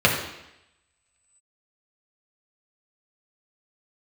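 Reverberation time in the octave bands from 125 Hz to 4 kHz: 0.75 s, 0.85 s, 0.85 s, 0.85 s, 0.95 s, 0.90 s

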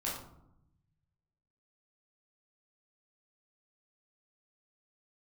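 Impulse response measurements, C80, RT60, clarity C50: 6.5 dB, 0.80 s, 3.0 dB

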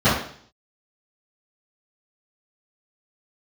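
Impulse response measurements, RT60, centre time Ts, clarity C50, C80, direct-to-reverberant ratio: 0.55 s, 47 ms, 2.5 dB, 7.5 dB, -17.0 dB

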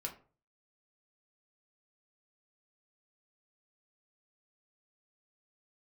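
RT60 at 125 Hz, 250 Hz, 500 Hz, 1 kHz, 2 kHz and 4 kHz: 0.60 s, 0.40 s, 0.45 s, 0.40 s, 0.30 s, 0.25 s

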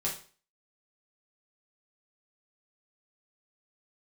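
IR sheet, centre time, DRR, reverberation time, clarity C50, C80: 25 ms, -5.5 dB, 0.40 s, 7.5 dB, 13.0 dB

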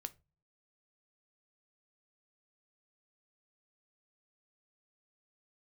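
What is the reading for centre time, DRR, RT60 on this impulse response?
3 ms, 11.0 dB, 0.30 s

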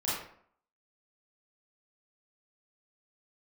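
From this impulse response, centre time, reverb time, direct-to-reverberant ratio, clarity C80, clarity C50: 63 ms, 0.60 s, -9.5 dB, 4.5 dB, -0.5 dB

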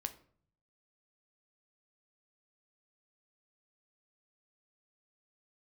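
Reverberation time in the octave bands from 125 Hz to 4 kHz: 0.95 s, 0.75 s, 0.60 s, 0.50 s, 0.40 s, 0.35 s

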